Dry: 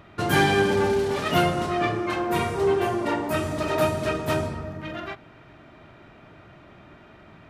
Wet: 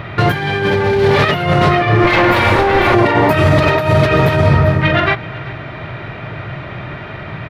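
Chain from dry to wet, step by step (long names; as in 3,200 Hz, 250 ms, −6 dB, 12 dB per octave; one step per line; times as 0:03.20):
0:02.04–0:02.95: lower of the sound and its delayed copy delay 3.4 ms
octave-band graphic EQ 125/250/500/1,000/2,000/4,000/8,000 Hz +11/−5/+5/+4/+10/+7/−8 dB
single-tap delay 380 ms −21 dB
compressor whose output falls as the input rises −23 dBFS, ratio −1
low-shelf EQ 480 Hz +5 dB
boost into a limiter +10 dB
level −1 dB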